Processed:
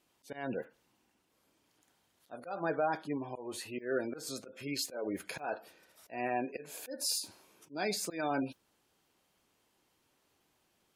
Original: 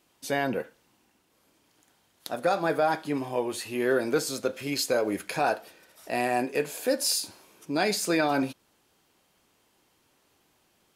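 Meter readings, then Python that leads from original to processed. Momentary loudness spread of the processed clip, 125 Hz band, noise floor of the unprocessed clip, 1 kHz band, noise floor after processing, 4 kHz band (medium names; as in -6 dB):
11 LU, -9.0 dB, -68 dBFS, -9.5 dB, -75 dBFS, -8.0 dB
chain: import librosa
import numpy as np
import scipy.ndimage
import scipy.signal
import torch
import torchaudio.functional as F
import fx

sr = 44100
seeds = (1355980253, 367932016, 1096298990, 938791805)

y = fx.auto_swell(x, sr, attack_ms=176.0)
y = fx.mod_noise(y, sr, seeds[0], snr_db=17)
y = fx.spec_gate(y, sr, threshold_db=-25, keep='strong')
y = y * librosa.db_to_amplitude(-7.0)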